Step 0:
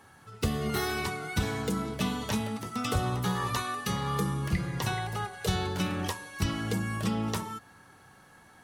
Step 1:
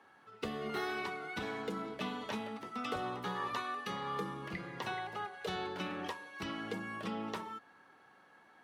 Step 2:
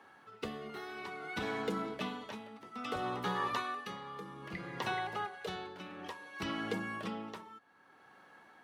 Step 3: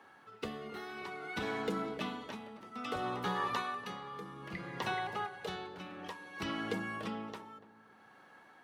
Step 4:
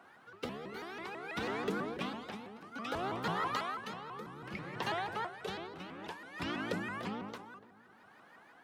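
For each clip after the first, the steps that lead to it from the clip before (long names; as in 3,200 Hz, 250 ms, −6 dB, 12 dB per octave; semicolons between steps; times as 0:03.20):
three-way crossover with the lows and the highs turned down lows −21 dB, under 220 Hz, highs −16 dB, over 4,000 Hz; level −5 dB
amplitude tremolo 0.6 Hz, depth 73%; level +3.5 dB
feedback echo with a low-pass in the loop 288 ms, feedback 43%, low-pass 980 Hz, level −13.5 dB
pitch modulation by a square or saw wave saw up 6.1 Hz, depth 250 cents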